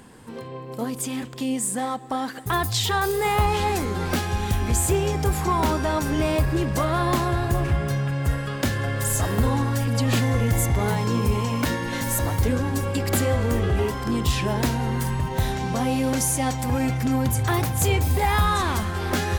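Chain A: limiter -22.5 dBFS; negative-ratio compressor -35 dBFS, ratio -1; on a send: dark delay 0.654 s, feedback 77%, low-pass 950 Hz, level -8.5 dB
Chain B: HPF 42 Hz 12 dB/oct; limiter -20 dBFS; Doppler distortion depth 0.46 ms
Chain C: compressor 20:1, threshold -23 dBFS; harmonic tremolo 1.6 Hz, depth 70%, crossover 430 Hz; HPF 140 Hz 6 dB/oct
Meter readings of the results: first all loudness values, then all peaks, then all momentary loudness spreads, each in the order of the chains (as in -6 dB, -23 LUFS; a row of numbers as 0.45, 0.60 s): -34.5, -28.5, -32.5 LUFS; -17.5, -20.0, -15.0 dBFS; 3, 2, 5 LU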